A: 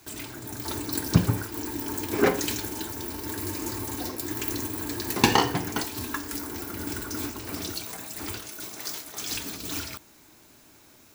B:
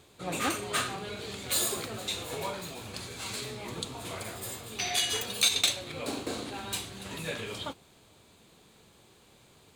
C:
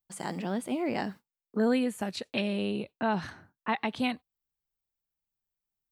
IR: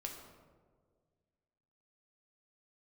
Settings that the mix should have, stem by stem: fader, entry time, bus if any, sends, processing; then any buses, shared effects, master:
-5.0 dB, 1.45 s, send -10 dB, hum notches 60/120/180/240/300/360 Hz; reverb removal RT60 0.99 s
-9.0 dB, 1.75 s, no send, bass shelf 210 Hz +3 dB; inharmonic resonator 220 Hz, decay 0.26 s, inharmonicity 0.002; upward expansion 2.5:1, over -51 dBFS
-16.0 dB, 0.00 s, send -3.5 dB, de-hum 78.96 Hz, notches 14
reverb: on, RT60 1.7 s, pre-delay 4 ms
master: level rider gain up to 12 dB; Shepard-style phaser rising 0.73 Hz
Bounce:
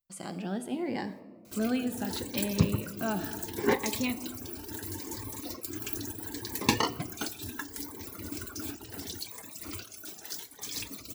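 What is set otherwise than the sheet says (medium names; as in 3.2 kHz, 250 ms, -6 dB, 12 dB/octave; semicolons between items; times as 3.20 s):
stem C -16.0 dB -> -4.5 dB; master: missing level rider gain up to 12 dB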